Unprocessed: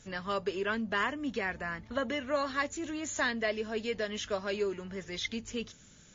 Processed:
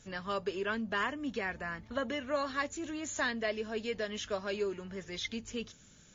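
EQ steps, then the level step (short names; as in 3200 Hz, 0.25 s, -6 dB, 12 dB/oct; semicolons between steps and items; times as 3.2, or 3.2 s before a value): notch 2000 Hz, Q 28; -2.0 dB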